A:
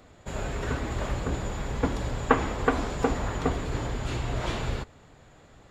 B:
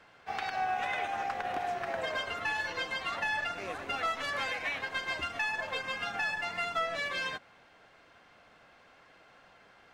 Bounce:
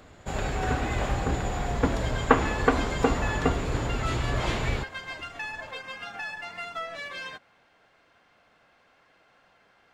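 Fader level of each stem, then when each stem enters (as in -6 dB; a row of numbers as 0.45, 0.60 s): +2.0, -3.0 dB; 0.00, 0.00 s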